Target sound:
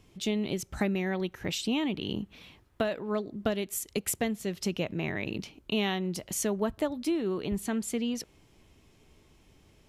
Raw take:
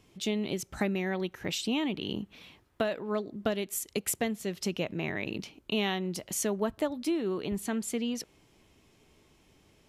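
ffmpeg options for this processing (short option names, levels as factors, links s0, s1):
-af "lowshelf=f=100:g=8.5"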